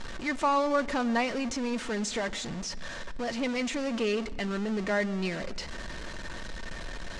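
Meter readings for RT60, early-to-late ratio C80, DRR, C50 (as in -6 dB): not exponential, 20.0 dB, 9.0 dB, 19.5 dB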